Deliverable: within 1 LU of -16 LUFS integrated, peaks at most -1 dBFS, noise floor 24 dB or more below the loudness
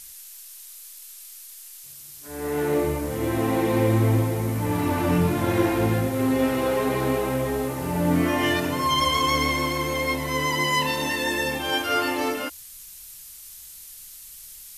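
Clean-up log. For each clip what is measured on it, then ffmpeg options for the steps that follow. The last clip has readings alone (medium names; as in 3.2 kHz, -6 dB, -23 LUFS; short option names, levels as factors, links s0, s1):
noise floor -43 dBFS; noise floor target -48 dBFS; loudness -23.5 LUFS; peak level -7.5 dBFS; loudness target -16.0 LUFS
-> -af "afftdn=nr=6:nf=-43"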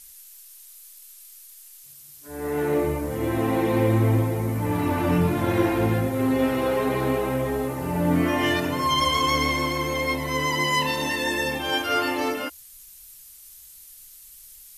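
noise floor -47 dBFS; noise floor target -48 dBFS
-> -af "afftdn=nr=6:nf=-47"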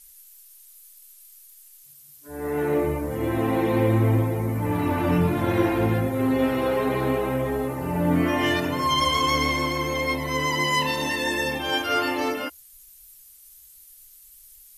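noise floor -50 dBFS; loudness -23.5 LUFS; peak level -7.5 dBFS; loudness target -16.0 LUFS
-> -af "volume=2.37,alimiter=limit=0.891:level=0:latency=1"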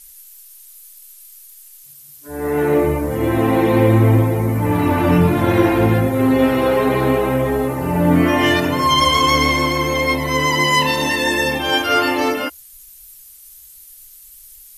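loudness -16.0 LUFS; peak level -1.0 dBFS; noise floor -43 dBFS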